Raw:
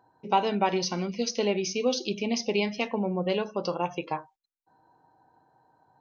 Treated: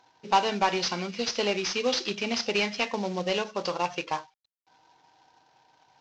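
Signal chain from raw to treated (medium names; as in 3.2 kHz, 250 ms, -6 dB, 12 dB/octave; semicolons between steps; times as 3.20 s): CVSD coder 32 kbps; tilt shelf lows -5.5 dB, about 720 Hz; trim +1 dB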